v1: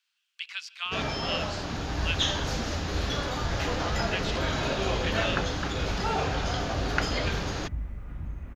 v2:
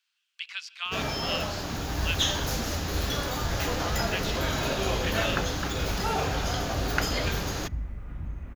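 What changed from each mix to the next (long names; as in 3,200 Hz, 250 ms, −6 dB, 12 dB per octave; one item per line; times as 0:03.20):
first sound: remove low-pass filter 5,400 Hz 12 dB per octave
second sound: send on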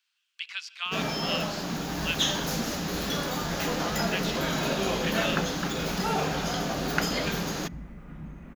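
speech: send +7.5 dB
master: add low shelf with overshoot 130 Hz −8.5 dB, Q 3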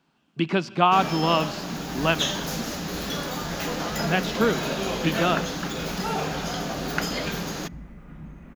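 speech: remove Bessel high-pass filter 2,700 Hz, order 4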